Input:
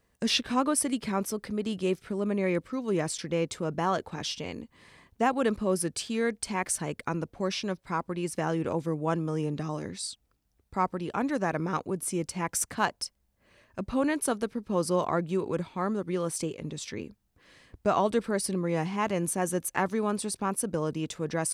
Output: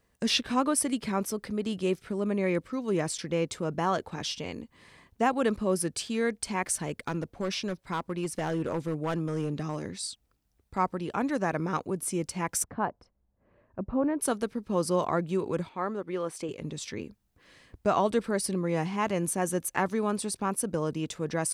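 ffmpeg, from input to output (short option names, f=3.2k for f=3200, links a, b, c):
-filter_complex "[0:a]asettb=1/sr,asplit=3[a][b][c];[a]atrim=end=6.784[d];[b]atrim=start=6.78:end=10.78,asetpts=PTS-STARTPTS,afade=t=in:d=0.004:c=qsin,afade=t=out:st=3.996:d=0.004:c=qsin,asoftclip=type=hard:threshold=-24.5dB[e];[c]atrim=start=10.776[f];[d][e]acrossfade=d=0.004:c1=hsin:c2=qsin[g];[g][f]acrossfade=d=0.004:c1=qsin:c2=hsin,asplit=3[h][i][j];[h]afade=t=out:st=12.62:d=0.02[k];[i]lowpass=1k,afade=t=in:st=12.62:d=0.02,afade=t=out:st=14.19:d=0.02[l];[j]afade=t=in:st=14.19:d=0.02[m];[k][l][m]amix=inputs=3:normalize=0,asettb=1/sr,asplit=3[n][o][p];[n]atrim=end=15.694[q];[o]atrim=start=15.69:end=16.49,asetpts=PTS-STARTPTS,afade=t=in:d=0.004:c=qsin,afade=t=out:st=0.796:d=0.004:c=qsin,bass=f=250:g=-10,treble=f=4k:g=-10[r];[p]atrim=start=16.486[s];[q][r]acrossfade=d=0.004:c1=hsin:c2=qsin[t];[t][s]acrossfade=d=0.004:c1=qsin:c2=hsin"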